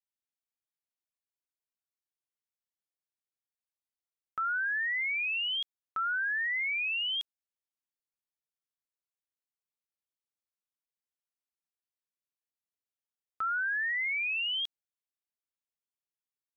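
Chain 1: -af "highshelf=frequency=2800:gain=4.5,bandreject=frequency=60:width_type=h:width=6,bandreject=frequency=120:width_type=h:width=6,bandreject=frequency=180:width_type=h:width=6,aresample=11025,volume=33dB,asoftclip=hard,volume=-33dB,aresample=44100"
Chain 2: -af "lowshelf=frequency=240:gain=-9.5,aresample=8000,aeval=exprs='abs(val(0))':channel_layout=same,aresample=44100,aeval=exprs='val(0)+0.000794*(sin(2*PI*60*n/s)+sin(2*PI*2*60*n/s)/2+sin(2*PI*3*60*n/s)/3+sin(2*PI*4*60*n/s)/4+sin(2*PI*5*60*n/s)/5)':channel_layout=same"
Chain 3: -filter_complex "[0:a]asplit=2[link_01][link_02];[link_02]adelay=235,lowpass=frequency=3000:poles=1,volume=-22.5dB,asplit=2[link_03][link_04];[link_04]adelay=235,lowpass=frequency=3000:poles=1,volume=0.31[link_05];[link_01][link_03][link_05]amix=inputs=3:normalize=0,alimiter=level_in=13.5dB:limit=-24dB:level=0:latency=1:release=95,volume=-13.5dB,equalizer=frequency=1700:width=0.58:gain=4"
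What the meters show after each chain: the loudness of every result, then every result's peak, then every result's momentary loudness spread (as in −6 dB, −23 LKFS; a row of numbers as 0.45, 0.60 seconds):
−32.5, −37.5, −36.0 LKFS; −29.0, −26.5, −33.5 dBFS; 7, 7, 8 LU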